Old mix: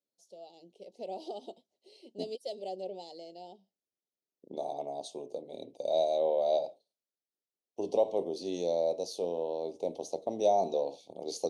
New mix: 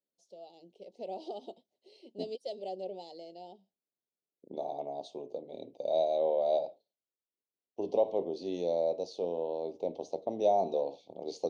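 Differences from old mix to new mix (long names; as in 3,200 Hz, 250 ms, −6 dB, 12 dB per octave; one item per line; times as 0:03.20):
second voice: add high-frequency loss of the air 82 metres
master: add high-frequency loss of the air 78 metres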